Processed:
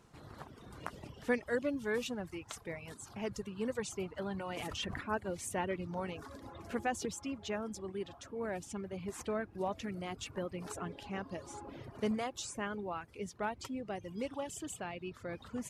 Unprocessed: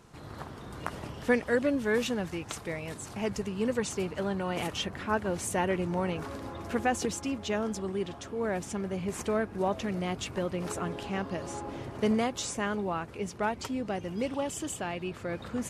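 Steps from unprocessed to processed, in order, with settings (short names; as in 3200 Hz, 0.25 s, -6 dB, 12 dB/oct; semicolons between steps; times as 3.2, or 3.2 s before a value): reverb removal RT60 0.93 s; 4.23–5.01 sustainer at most 25 dB/s; gain -6.5 dB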